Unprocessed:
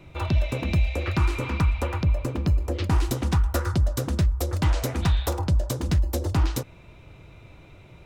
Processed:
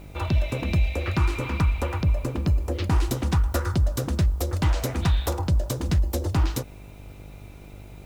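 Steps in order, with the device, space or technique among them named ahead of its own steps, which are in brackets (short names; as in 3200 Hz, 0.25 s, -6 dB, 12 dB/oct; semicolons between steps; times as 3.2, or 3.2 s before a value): video cassette with head-switching buzz (buzz 50 Hz, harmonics 17, -44 dBFS -6 dB/oct; white noise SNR 38 dB)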